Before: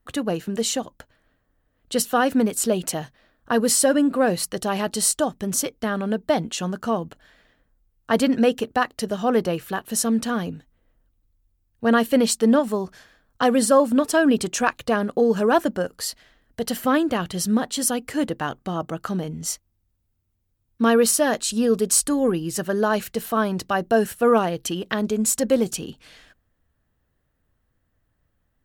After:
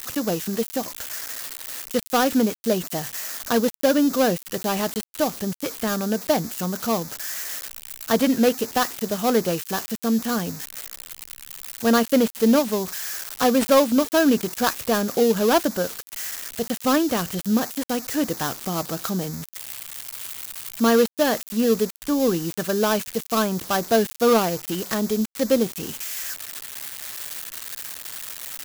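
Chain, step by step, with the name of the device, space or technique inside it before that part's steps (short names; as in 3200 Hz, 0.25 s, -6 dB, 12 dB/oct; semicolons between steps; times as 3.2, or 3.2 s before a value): budget class-D amplifier (switching dead time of 0.17 ms; switching spikes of -15 dBFS)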